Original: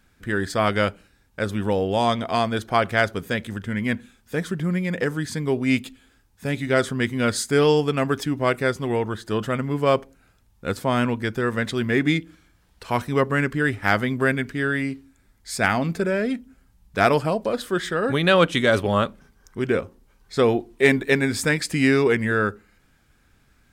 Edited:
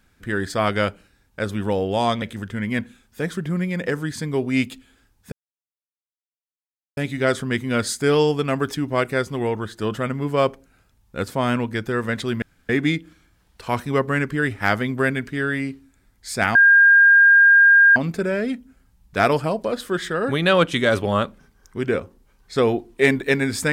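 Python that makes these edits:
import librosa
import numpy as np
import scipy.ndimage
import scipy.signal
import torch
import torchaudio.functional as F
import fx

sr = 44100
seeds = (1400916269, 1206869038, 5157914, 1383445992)

y = fx.edit(x, sr, fx.cut(start_s=2.22, length_s=1.14),
    fx.insert_silence(at_s=6.46, length_s=1.65),
    fx.insert_room_tone(at_s=11.91, length_s=0.27),
    fx.insert_tone(at_s=15.77, length_s=1.41, hz=1610.0, db=-8.5), tone=tone)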